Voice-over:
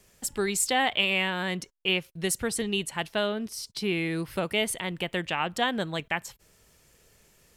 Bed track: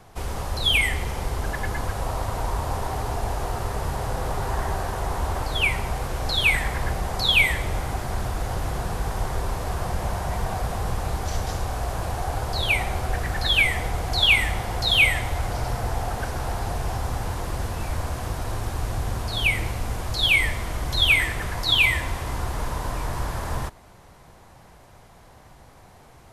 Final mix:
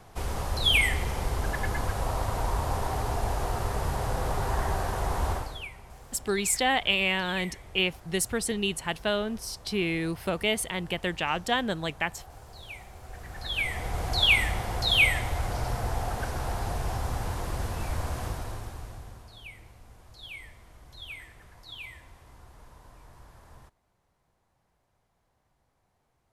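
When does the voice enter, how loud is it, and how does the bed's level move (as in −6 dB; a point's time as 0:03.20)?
5.90 s, 0.0 dB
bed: 0:05.32 −2 dB
0:05.70 −21 dB
0:12.93 −21 dB
0:14.02 −3.5 dB
0:18.25 −3.5 dB
0:19.46 −24 dB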